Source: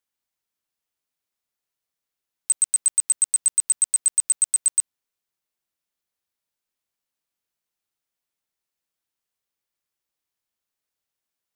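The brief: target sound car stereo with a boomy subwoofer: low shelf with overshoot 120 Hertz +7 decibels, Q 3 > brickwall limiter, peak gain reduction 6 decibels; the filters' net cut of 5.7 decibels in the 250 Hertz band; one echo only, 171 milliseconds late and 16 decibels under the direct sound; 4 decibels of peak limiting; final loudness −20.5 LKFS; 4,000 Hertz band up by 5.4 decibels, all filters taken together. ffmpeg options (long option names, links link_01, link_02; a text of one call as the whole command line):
ffmpeg -i in.wav -af "equalizer=frequency=250:width_type=o:gain=-5.5,equalizer=frequency=4000:width_type=o:gain=7,alimiter=limit=-14.5dB:level=0:latency=1,lowshelf=frequency=120:width_type=q:width=3:gain=7,aecho=1:1:171:0.158,volume=7.5dB,alimiter=limit=-13dB:level=0:latency=1" out.wav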